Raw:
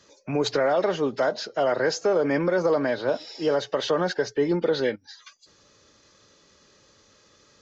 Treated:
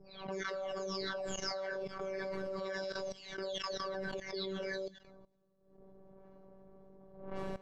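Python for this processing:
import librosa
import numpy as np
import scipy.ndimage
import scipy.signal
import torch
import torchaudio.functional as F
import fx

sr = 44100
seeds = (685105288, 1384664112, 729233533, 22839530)

y = fx.spec_delay(x, sr, highs='early', ms=716)
y = fx.dmg_wind(y, sr, seeds[0], corner_hz=510.0, level_db=-39.0)
y = fx.peak_eq(y, sr, hz=85.0, db=8.5, octaves=0.24)
y = fx.robotise(y, sr, hz=192.0)
y = fx.env_lowpass(y, sr, base_hz=410.0, full_db=-26.0)
y = y + 0.53 * np.pad(y, (int(7.0 * sr / 1000.0), 0))[:len(y)]
y = fx.echo_wet_highpass(y, sr, ms=84, feedback_pct=52, hz=5000.0, wet_db=-13.5)
y = fx.level_steps(y, sr, step_db=18)
y = fx.high_shelf(y, sr, hz=3500.0, db=7.0)
y = fx.pre_swell(y, sr, db_per_s=83.0)
y = y * 10.0 ** (-3.5 / 20.0)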